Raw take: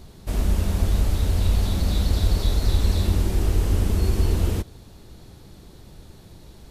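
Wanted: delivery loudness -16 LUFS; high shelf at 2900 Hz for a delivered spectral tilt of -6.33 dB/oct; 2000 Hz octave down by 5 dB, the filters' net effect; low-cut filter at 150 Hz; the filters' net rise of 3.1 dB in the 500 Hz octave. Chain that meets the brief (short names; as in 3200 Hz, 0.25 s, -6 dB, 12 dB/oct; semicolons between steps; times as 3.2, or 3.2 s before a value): HPF 150 Hz; bell 500 Hz +4.5 dB; bell 2000 Hz -4.5 dB; high shelf 2900 Hz -5.5 dB; gain +14.5 dB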